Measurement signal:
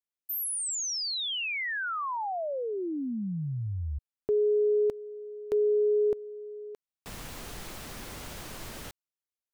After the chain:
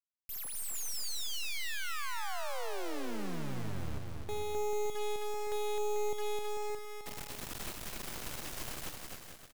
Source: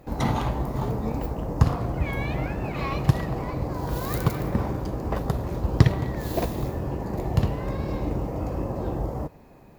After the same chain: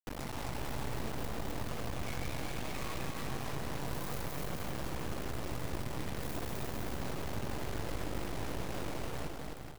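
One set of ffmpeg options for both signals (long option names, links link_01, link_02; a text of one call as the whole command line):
ffmpeg -i in.wav -filter_complex "[0:a]acompressor=threshold=-33dB:ratio=6:attack=0.37:release=122:knee=6:detection=rms,acrusher=bits=4:dc=4:mix=0:aa=0.000001,asplit=2[link_01][link_02];[link_02]aecho=0:1:260|442|569.4|658.6|721:0.631|0.398|0.251|0.158|0.1[link_03];[link_01][link_03]amix=inputs=2:normalize=0" out.wav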